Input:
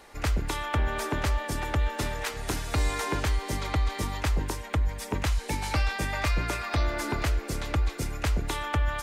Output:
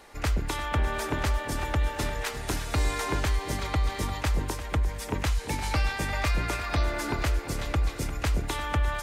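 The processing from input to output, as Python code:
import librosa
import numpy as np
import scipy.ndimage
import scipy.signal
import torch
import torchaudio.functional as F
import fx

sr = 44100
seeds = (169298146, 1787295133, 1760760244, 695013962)

y = fx.echo_feedback(x, sr, ms=349, feedback_pct=35, wet_db=-13)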